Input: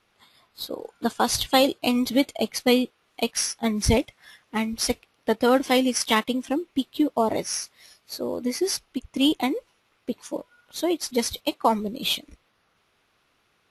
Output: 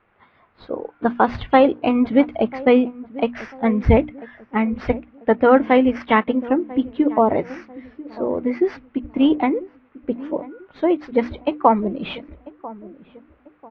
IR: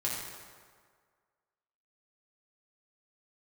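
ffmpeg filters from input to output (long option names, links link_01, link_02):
-filter_complex "[0:a]lowpass=frequency=2100:width=0.5412,lowpass=frequency=2100:width=1.3066,equalizer=frequency=75:width_type=o:width=0.37:gain=4,bandreject=frequency=60:width_type=h:width=6,bandreject=frequency=120:width_type=h:width=6,bandreject=frequency=180:width_type=h:width=6,bandreject=frequency=240:width_type=h:width=6,bandreject=frequency=300:width_type=h:width=6,asplit=2[link_01][link_02];[link_02]adelay=993,lowpass=frequency=830:poles=1,volume=-17dB,asplit=2[link_03][link_04];[link_04]adelay=993,lowpass=frequency=830:poles=1,volume=0.43,asplit=2[link_05][link_06];[link_06]adelay=993,lowpass=frequency=830:poles=1,volume=0.43,asplit=2[link_07][link_08];[link_08]adelay=993,lowpass=frequency=830:poles=1,volume=0.43[link_09];[link_03][link_05][link_07][link_09]amix=inputs=4:normalize=0[link_10];[link_01][link_10]amix=inputs=2:normalize=0,volume=6.5dB"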